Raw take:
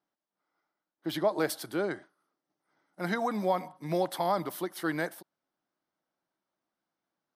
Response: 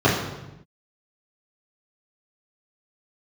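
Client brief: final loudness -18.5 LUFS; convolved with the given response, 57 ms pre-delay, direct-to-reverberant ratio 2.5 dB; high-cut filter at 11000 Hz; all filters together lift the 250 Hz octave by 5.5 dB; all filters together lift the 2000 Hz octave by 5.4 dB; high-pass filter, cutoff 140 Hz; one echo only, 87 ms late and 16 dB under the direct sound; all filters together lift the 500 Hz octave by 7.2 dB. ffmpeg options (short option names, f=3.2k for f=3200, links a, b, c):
-filter_complex "[0:a]highpass=140,lowpass=11k,equalizer=f=250:t=o:g=5,equalizer=f=500:t=o:g=7.5,equalizer=f=2k:t=o:g=6.5,aecho=1:1:87:0.158,asplit=2[a][b];[1:a]atrim=start_sample=2205,adelay=57[c];[b][c]afir=irnorm=-1:irlink=0,volume=-24dB[d];[a][d]amix=inputs=2:normalize=0,volume=4.5dB"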